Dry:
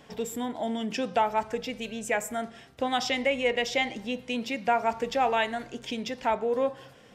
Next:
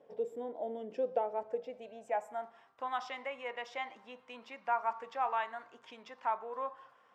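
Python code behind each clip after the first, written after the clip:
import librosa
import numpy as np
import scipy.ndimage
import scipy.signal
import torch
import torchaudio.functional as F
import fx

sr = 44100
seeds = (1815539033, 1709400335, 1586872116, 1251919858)

y = fx.filter_sweep_bandpass(x, sr, from_hz=510.0, to_hz=1100.0, start_s=1.4, end_s=2.79, q=3.7)
y = fx.high_shelf(y, sr, hz=5800.0, db=8.0)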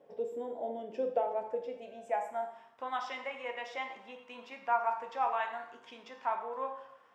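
y = fx.rev_plate(x, sr, seeds[0], rt60_s=0.72, hf_ratio=0.95, predelay_ms=0, drr_db=4.0)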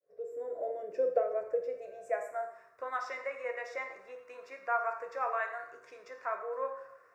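y = fx.fade_in_head(x, sr, length_s=0.61)
y = fx.fixed_phaser(y, sr, hz=860.0, stages=6)
y = y * 10.0 ** (4.0 / 20.0)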